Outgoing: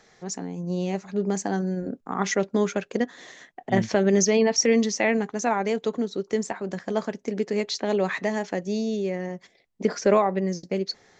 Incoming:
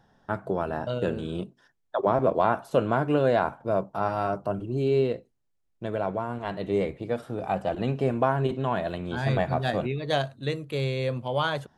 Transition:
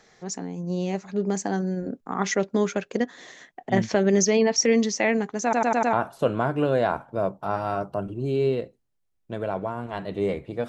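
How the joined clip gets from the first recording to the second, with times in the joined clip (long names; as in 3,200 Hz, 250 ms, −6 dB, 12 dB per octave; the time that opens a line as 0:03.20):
outgoing
0:05.43: stutter in place 0.10 s, 5 plays
0:05.93: continue with incoming from 0:02.45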